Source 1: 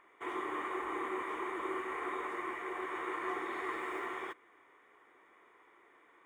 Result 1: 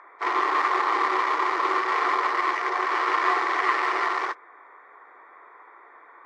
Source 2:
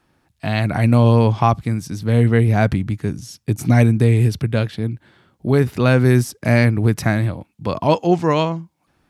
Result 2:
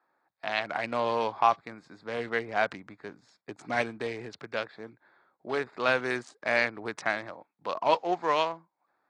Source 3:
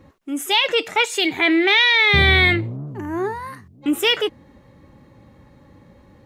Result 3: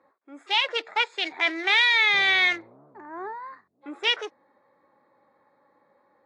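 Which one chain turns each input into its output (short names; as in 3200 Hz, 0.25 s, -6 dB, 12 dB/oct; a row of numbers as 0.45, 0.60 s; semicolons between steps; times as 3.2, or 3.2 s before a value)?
Wiener smoothing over 15 samples; BPF 740–5200 Hz; AAC 48 kbps 22050 Hz; normalise peaks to -9 dBFS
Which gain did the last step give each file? +19.0, -3.0, -3.0 dB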